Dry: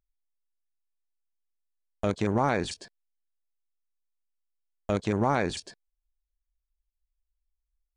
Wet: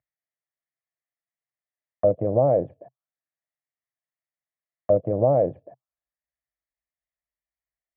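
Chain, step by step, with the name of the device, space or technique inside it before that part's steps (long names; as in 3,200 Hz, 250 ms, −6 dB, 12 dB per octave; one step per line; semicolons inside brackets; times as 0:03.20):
envelope filter bass rig (envelope-controlled low-pass 530–1,900 Hz down, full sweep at −31.5 dBFS; loudspeaker in its box 87–2,200 Hz, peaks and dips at 130 Hz +7 dB, 220 Hz −9 dB, 400 Hz −10 dB, 650 Hz +8 dB, 940 Hz −6 dB, 1,500 Hz −10 dB)
level +1 dB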